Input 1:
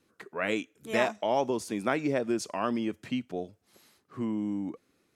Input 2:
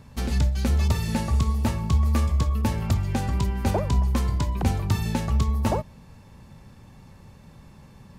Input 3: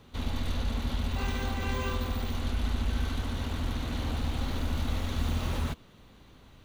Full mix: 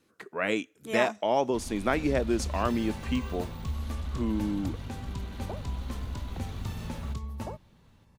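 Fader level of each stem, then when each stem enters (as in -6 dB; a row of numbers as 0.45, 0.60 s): +1.5, -13.5, -10.0 dB; 0.00, 1.75, 1.40 s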